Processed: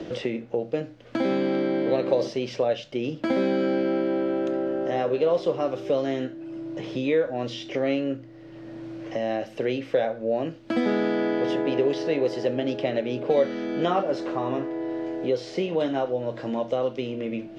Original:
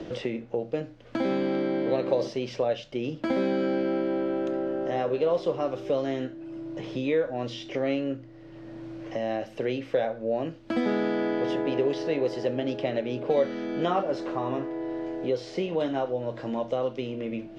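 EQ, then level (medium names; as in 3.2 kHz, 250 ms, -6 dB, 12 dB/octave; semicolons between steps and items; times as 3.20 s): bass shelf 68 Hz -8.5 dB; peaking EQ 990 Hz -2 dB; +3.0 dB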